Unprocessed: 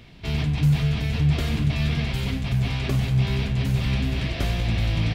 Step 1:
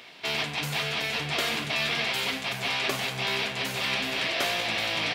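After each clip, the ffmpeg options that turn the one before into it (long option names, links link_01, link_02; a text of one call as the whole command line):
ffmpeg -i in.wav -af "highpass=590,volume=6.5dB" out.wav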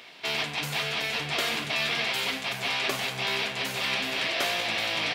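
ffmpeg -i in.wav -af "lowshelf=frequency=200:gain=-4.5" out.wav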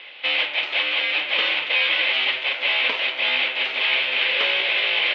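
ffmpeg -i in.wav -af "aexciter=amount=3.3:drive=3.2:freq=2400,highpass=frequency=550:width_type=q:width=0.5412,highpass=frequency=550:width_type=q:width=1.307,lowpass=frequency=3500:width_type=q:width=0.5176,lowpass=frequency=3500:width_type=q:width=0.7071,lowpass=frequency=3500:width_type=q:width=1.932,afreqshift=-140,volume=3dB" out.wav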